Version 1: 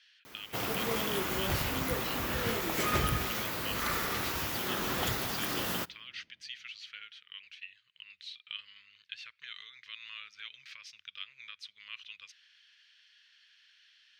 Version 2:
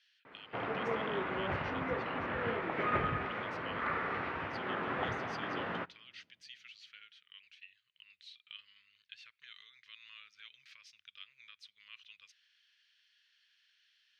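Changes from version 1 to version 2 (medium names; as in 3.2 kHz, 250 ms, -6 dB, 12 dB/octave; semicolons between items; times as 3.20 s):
speech -8.5 dB; background: add cabinet simulation 120–2200 Hz, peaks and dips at 130 Hz -4 dB, 210 Hz -5 dB, 330 Hz -4 dB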